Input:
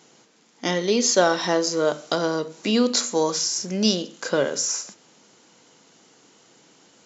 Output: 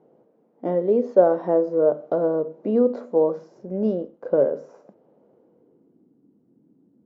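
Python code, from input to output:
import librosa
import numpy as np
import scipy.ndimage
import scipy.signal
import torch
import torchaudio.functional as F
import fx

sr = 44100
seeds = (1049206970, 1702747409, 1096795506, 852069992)

y = fx.law_mismatch(x, sr, coded='A', at=(3.6, 4.41))
y = fx.filter_sweep_lowpass(y, sr, from_hz=560.0, to_hz=260.0, start_s=5.31, end_s=6.16, q=2.3)
y = fx.dynamic_eq(y, sr, hz=1500.0, q=0.95, threshold_db=-36.0, ratio=4.0, max_db=4)
y = y * 10.0 ** (-3.0 / 20.0)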